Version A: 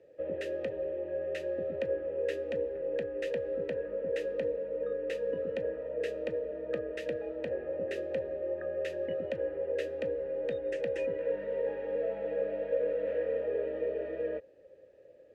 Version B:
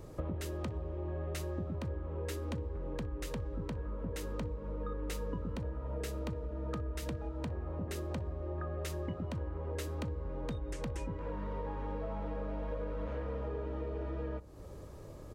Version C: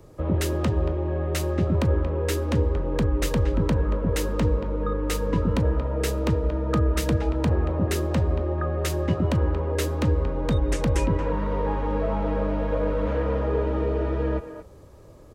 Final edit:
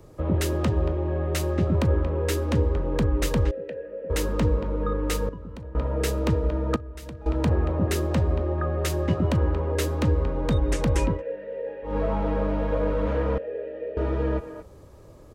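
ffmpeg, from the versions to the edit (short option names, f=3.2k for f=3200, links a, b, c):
-filter_complex "[0:a]asplit=3[a][b][c];[1:a]asplit=2[d][e];[2:a]asplit=6[f][g][h][i][j][k];[f]atrim=end=3.512[l];[a]atrim=start=3.508:end=4.102[m];[g]atrim=start=4.098:end=5.292[n];[d]atrim=start=5.288:end=5.752[o];[h]atrim=start=5.748:end=6.762[p];[e]atrim=start=6.758:end=7.262[q];[i]atrim=start=7.258:end=11.23[r];[b]atrim=start=11.07:end=11.98[s];[j]atrim=start=11.82:end=13.382[t];[c]atrim=start=13.378:end=13.972[u];[k]atrim=start=13.968[v];[l][m]acrossfade=d=0.004:c1=hsin:c2=hsin[w];[w][n]acrossfade=d=0.004:c1=hsin:c2=hsin[x];[x][o]acrossfade=d=0.004:c1=hsin:c2=hsin[y];[y][p]acrossfade=d=0.004:c1=hsin:c2=hsin[z];[z][q]acrossfade=d=0.004:c1=hsin:c2=hsin[aa];[aa][r]acrossfade=d=0.004:c1=hsin:c2=hsin[ab];[ab][s]acrossfade=d=0.16:c1=tri:c2=tri[ac];[ac][t]acrossfade=d=0.16:c1=tri:c2=tri[ad];[ad][u]acrossfade=d=0.004:c1=hsin:c2=hsin[ae];[ae][v]acrossfade=d=0.004:c1=hsin:c2=hsin"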